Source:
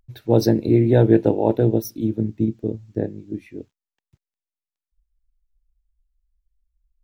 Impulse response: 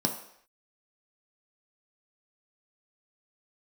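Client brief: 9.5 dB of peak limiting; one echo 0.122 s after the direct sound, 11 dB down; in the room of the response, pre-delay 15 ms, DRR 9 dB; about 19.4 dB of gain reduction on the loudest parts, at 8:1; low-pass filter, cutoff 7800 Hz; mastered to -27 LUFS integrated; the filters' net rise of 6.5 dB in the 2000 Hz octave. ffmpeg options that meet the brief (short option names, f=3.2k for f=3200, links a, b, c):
-filter_complex "[0:a]lowpass=7.8k,equalizer=f=2k:t=o:g=8.5,acompressor=threshold=-30dB:ratio=8,alimiter=level_in=3.5dB:limit=-24dB:level=0:latency=1,volume=-3.5dB,aecho=1:1:122:0.282,asplit=2[a][b];[1:a]atrim=start_sample=2205,adelay=15[c];[b][c]afir=irnorm=-1:irlink=0,volume=-16.5dB[d];[a][d]amix=inputs=2:normalize=0,volume=10dB"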